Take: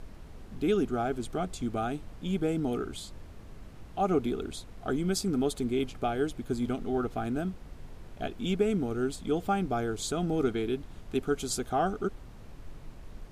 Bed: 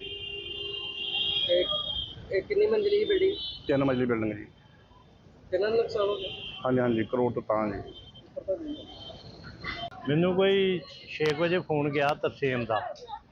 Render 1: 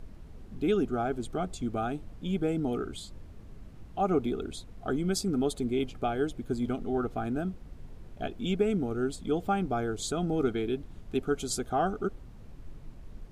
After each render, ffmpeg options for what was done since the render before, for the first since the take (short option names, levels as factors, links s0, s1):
-af "afftdn=nr=6:nf=-48"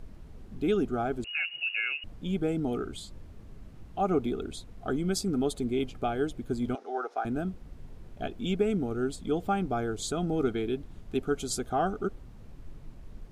-filter_complex "[0:a]asettb=1/sr,asplit=3[s0][s1][s2];[s0]atrim=end=1.244[s3];[s1]atrim=start=1.24:end=2.04,asetpts=PTS-STARTPTS,afade=t=in:d=0.004:c=qsin,afade=t=out:st=0.796:d=0.004:c=qsin,lowpass=f=2500:t=q:w=0.5098,lowpass=f=2500:t=q:w=0.6013,lowpass=f=2500:t=q:w=0.9,lowpass=f=2500:t=q:w=2.563,afreqshift=-2900[s4];[s2]atrim=start=2.036[s5];[s3][s4]acrossfade=d=0.004:c1=hsin:c2=qsin[s6];[s6][s5]acrossfade=d=0.004:c1=qsin:c2=hsin,asettb=1/sr,asplit=3[s7][s8][s9];[s7]atrim=end=6.754[s10];[s8]atrim=start=6.75:end=7.25,asetpts=PTS-STARTPTS,afade=t=in:d=0.004:c=qsin,afade=t=out:st=0.496:d=0.004:c=qsin,highpass=f=430:w=0.5412,highpass=f=430:w=1.3066,equalizer=f=830:t=q:w=4:g=6,equalizer=f=1500:t=q:w=4:g=4,equalizer=f=3000:t=q:w=4:g=-4,equalizer=f=5500:t=q:w=4:g=7,equalizer=f=8000:t=q:w=4:g=-7,lowpass=f=9500:w=0.5412,lowpass=f=9500:w=1.3066[s11];[s9]atrim=start=7.246[s12];[s10][s11]acrossfade=d=0.004:c1=hsin:c2=qsin[s13];[s13][s12]acrossfade=d=0.004:c1=qsin:c2=hsin"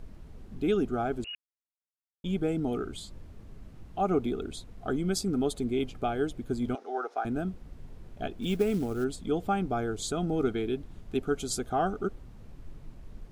-filter_complex "[0:a]asplit=3[s0][s1][s2];[s0]afade=t=out:st=8.41:d=0.02[s3];[s1]acrusher=bits=6:mode=log:mix=0:aa=0.000001,afade=t=in:st=8.41:d=0.02,afade=t=out:st=9.03:d=0.02[s4];[s2]afade=t=in:st=9.03:d=0.02[s5];[s3][s4][s5]amix=inputs=3:normalize=0,asplit=3[s6][s7][s8];[s6]atrim=end=1.35,asetpts=PTS-STARTPTS,afade=t=out:st=1.346:d=0.004:c=hsin[s9];[s7]atrim=start=1.35:end=2.24,asetpts=PTS-STARTPTS,volume=0[s10];[s8]atrim=start=2.24,asetpts=PTS-STARTPTS,afade=t=in:d=0.004:c=hsin[s11];[s9][s10][s11]concat=n=3:v=0:a=1"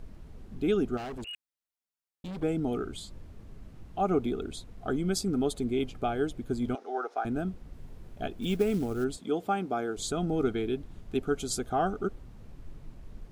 -filter_complex "[0:a]asettb=1/sr,asplit=3[s0][s1][s2];[s0]atrim=end=0.974[s3];[s1]atrim=start=0.97:end=2.43,asetpts=PTS-STARTPTS,afade=t=in:d=0.004:c=qsin,afade=t=out:st=1.456:d=0.004:c=qsin,volume=63.1,asoftclip=hard,volume=0.0158[s4];[s2]atrim=start=2.426[s5];[s3][s4]acrossfade=d=0.004:c1=hsin:c2=qsin[s6];[s6][s5]acrossfade=d=0.004:c1=qsin:c2=hsin,asettb=1/sr,asplit=3[s7][s8][s9];[s7]atrim=end=7.744[s10];[s8]atrim=start=7.74:end=8.46,asetpts=PTS-STARTPTS,afade=t=in:d=0.004:c=qsin,afade=t=out:st=0.716:d=0.004:c=qsin,highshelf=f=11000:g=6[s11];[s9]atrim=start=8.456[s12];[s10][s11]acrossfade=d=0.004:c1=hsin:c2=qsin[s13];[s13][s12]acrossfade=d=0.004:c1=qsin:c2=hsin,asettb=1/sr,asplit=3[s14][s15][s16];[s14]atrim=end=9.174[s17];[s15]atrim=start=9.17:end=9.97,asetpts=PTS-STARTPTS,afade=t=in:d=0.004:c=qsin,afade=t=out:st=0.796:d=0.004:c=qsin,highpass=220[s18];[s16]atrim=start=9.966[s19];[s17][s18]acrossfade=d=0.004:c1=hsin:c2=qsin[s20];[s20][s19]acrossfade=d=0.004:c1=qsin:c2=hsin"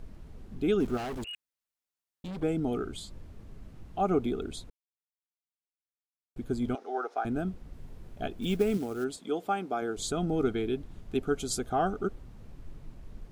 -filter_complex "[0:a]asettb=1/sr,asplit=3[s0][s1][s2];[s0]atrim=end=0.804[s3];[s1]atrim=start=0.8:end=1.24,asetpts=PTS-STARTPTS,afade=t=in:d=0.004:c=qsin,afade=t=out:st=0.436:d=0.004:c=qsin,aeval=exprs='val(0)+0.5*0.00891*sgn(val(0))':c=same[s4];[s2]atrim=start=1.236[s5];[s3][s4]acrossfade=d=0.004:c1=hsin:c2=qsin[s6];[s6][s5]acrossfade=d=0.004:c1=qsin:c2=hsin,asettb=1/sr,asplit=3[s7][s8][s9];[s7]atrim=end=8.774[s10];[s8]atrim=start=8.77:end=9.82,asetpts=PTS-STARTPTS,afade=t=in:d=0.004:c=qsin,afade=t=out:st=1.046:d=0.004:c=qsin,highpass=f=280:p=1[s11];[s9]atrim=start=9.816[s12];[s10][s11]acrossfade=d=0.004:c1=hsin:c2=qsin[s13];[s13][s12]acrossfade=d=0.004:c1=qsin:c2=hsin,asplit=3[s14][s15][s16];[s14]atrim=end=4.7,asetpts=PTS-STARTPTS,afade=t=out:st=4.696:d=0.004:c=hsin[s17];[s15]atrim=start=4.7:end=6.36,asetpts=PTS-STARTPTS,volume=0[s18];[s16]atrim=start=6.36,asetpts=PTS-STARTPTS,afade=t=in:d=0.004:c=hsin[s19];[s17][s18][s19]concat=n=3:v=0:a=1"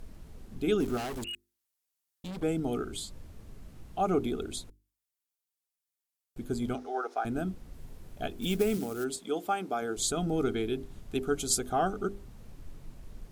-af "aemphasis=mode=production:type=cd,bandreject=f=50:t=h:w=6,bandreject=f=100:t=h:w=6,bandreject=f=150:t=h:w=6,bandreject=f=200:t=h:w=6,bandreject=f=250:t=h:w=6,bandreject=f=300:t=h:w=6,bandreject=f=350:t=h:w=6,bandreject=f=400:t=h:w=6"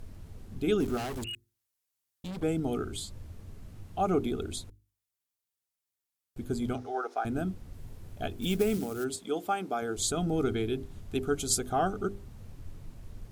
-af "equalizer=f=96:t=o:w=0.63:g=10.5,bandreject=f=60:t=h:w=6,bandreject=f=120:t=h:w=6"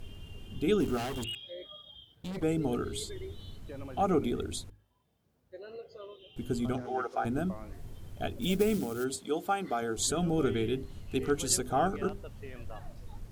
-filter_complex "[1:a]volume=0.106[s0];[0:a][s0]amix=inputs=2:normalize=0"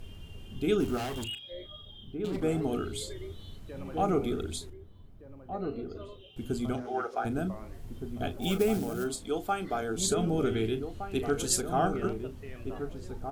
-filter_complex "[0:a]asplit=2[s0][s1];[s1]adelay=36,volume=0.251[s2];[s0][s2]amix=inputs=2:normalize=0,asplit=2[s3][s4];[s4]adelay=1516,volume=0.447,highshelf=f=4000:g=-34.1[s5];[s3][s5]amix=inputs=2:normalize=0"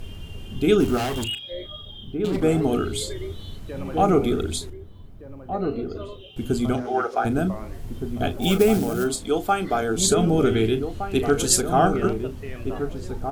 -af "volume=2.82"